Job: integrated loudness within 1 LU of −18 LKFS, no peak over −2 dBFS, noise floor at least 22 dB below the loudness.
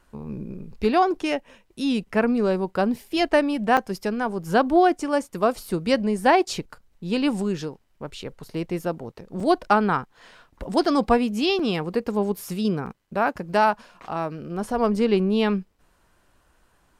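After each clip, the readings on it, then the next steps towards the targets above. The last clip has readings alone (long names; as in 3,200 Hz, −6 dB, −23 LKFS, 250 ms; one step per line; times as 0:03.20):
number of dropouts 4; longest dropout 4.3 ms; integrated loudness −23.5 LKFS; sample peak −6.0 dBFS; target loudness −18.0 LKFS
→ repair the gap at 0:03.77/0:09.40/0:11.59/0:12.86, 4.3 ms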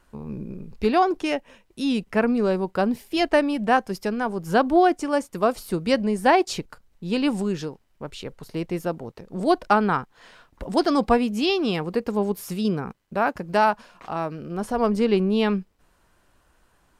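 number of dropouts 0; integrated loudness −23.5 LKFS; sample peak −6.0 dBFS; target loudness −18.0 LKFS
→ level +5.5 dB
brickwall limiter −2 dBFS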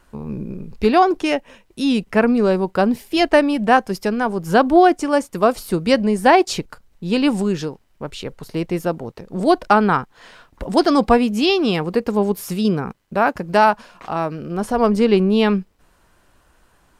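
integrated loudness −18.0 LKFS; sample peak −2.0 dBFS; background noise floor −58 dBFS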